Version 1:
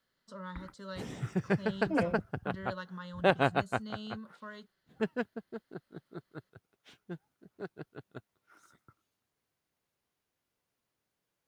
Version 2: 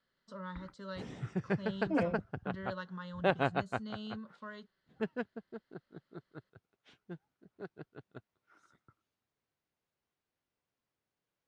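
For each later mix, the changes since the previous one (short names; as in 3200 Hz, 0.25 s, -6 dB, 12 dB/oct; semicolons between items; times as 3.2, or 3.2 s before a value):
background -3.5 dB; master: add air absorption 78 m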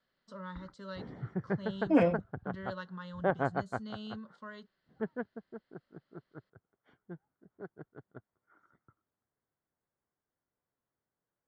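second voice +7.5 dB; background: add polynomial smoothing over 41 samples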